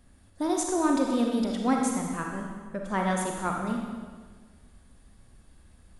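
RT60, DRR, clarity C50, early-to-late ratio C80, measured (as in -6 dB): 1.5 s, 0.5 dB, 2.0 dB, 4.0 dB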